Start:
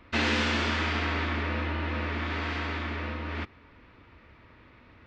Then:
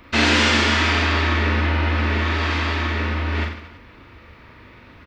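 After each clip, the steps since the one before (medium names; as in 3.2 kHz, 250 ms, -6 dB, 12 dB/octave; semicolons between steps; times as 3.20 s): treble shelf 5.8 kHz +9 dB; on a send: reverse bouncing-ball echo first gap 40 ms, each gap 1.25×, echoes 5; on the sum: trim +7 dB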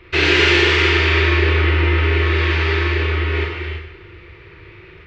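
FFT filter 170 Hz 0 dB, 240 Hz -30 dB, 360 Hz +11 dB, 560 Hz -8 dB, 1 kHz -8 dB, 2.4 kHz +2 dB, 10 kHz -15 dB; gated-style reverb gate 360 ms flat, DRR 1.5 dB; trim +2.5 dB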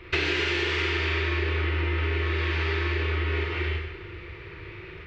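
compression 10:1, threshold -23 dBFS, peak gain reduction 13.5 dB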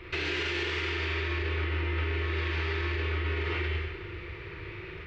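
peak limiter -22.5 dBFS, peak gain reduction 8.5 dB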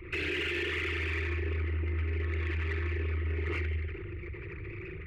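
resonances exaggerated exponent 2; in parallel at -3.5 dB: saturation -35.5 dBFS, distortion -9 dB; on the sum: trim -3.5 dB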